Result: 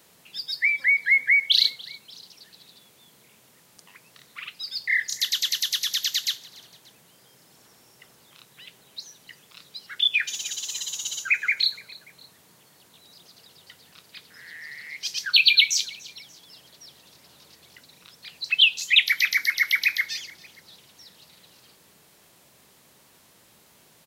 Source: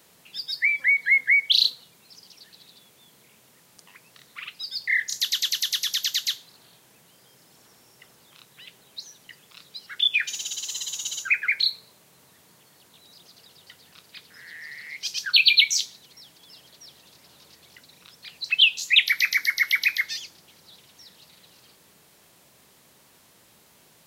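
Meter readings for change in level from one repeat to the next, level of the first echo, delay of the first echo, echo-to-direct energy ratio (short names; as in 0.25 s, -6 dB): -6.0 dB, -22.0 dB, 0.291 s, -21.0 dB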